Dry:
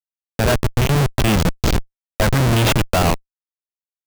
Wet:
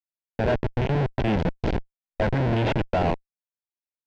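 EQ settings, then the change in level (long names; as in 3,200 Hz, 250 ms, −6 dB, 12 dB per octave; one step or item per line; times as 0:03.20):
head-to-tape spacing loss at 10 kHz 42 dB
low-shelf EQ 240 Hz −9.5 dB
parametric band 1,200 Hz −14 dB 0.23 octaves
0.0 dB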